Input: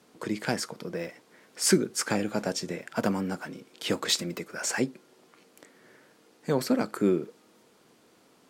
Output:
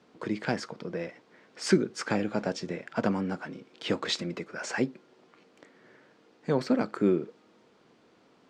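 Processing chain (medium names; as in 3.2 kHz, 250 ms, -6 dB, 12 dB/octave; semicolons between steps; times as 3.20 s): distance through air 130 m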